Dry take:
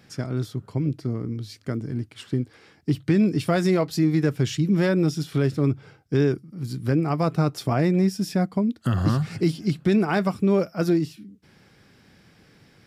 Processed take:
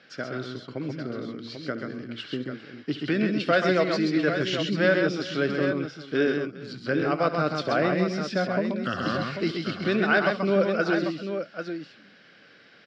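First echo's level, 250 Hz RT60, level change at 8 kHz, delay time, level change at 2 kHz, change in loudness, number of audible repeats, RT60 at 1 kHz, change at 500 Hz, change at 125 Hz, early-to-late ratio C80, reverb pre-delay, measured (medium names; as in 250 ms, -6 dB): -14.5 dB, no reverb, no reading, 71 ms, +7.5 dB, -2.5 dB, 4, no reverb, +1.0 dB, -10.0 dB, no reverb, no reverb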